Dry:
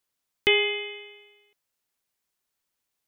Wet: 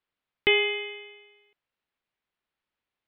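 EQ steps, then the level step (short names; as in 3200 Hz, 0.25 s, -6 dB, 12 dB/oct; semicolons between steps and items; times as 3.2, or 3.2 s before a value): LPF 4100 Hz; air absorption 340 m; high shelf 2500 Hz +9.5 dB; 0.0 dB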